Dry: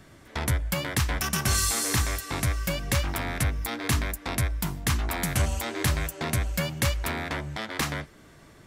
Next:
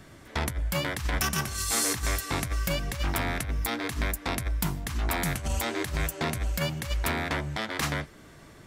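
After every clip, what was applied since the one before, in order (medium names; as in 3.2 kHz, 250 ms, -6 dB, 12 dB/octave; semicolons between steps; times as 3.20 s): compressor with a negative ratio -27 dBFS, ratio -0.5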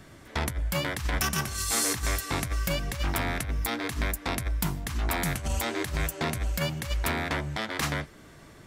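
no audible change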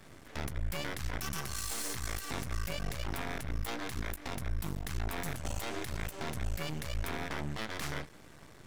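peak limiter -24 dBFS, peak gain reduction 11 dB; half-wave rectifier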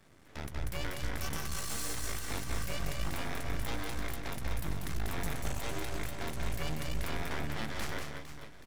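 on a send: reverse bouncing-ball echo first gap 190 ms, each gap 1.4×, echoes 5; on the sum: upward expansion 1.5:1, over -43 dBFS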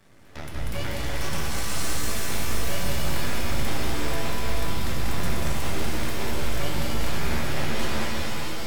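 tracing distortion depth 0.024 ms; pitch-shifted reverb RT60 3.6 s, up +7 st, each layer -2 dB, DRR -1 dB; trim +3.5 dB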